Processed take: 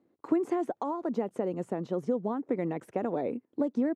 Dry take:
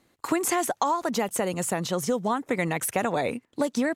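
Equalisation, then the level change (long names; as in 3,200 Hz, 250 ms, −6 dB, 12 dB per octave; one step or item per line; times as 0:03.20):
resonant band-pass 330 Hz, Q 1.3
0.0 dB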